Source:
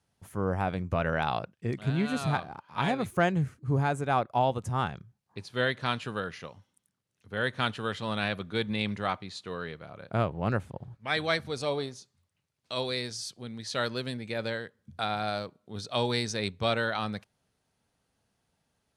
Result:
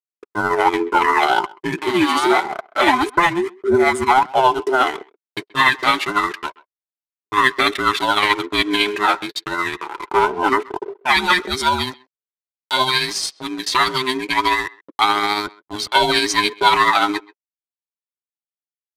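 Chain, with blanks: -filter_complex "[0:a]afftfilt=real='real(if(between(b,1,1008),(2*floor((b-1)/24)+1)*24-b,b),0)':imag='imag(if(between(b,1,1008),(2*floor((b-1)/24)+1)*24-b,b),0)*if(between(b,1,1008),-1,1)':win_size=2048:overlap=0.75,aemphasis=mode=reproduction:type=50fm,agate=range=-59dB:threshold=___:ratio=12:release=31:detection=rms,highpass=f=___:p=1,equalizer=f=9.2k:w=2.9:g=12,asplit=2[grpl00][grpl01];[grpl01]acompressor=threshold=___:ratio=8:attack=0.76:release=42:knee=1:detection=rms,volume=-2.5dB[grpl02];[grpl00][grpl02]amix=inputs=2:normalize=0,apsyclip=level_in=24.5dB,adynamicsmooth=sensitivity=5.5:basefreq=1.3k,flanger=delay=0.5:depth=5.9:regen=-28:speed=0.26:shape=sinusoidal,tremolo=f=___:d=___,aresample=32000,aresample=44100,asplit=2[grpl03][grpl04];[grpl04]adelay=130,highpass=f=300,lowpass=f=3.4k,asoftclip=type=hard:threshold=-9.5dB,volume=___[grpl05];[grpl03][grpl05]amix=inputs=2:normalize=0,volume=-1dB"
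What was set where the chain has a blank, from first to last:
-45dB, 990, -44dB, 14, 0.37, -22dB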